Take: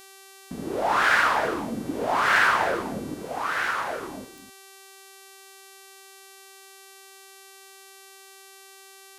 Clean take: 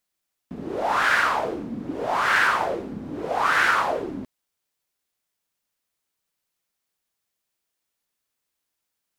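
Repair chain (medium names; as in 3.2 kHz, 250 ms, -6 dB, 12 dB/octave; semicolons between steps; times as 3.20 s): de-click; de-hum 387.9 Hz, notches 33; inverse comb 249 ms -11.5 dB; trim 0 dB, from 3.14 s +7 dB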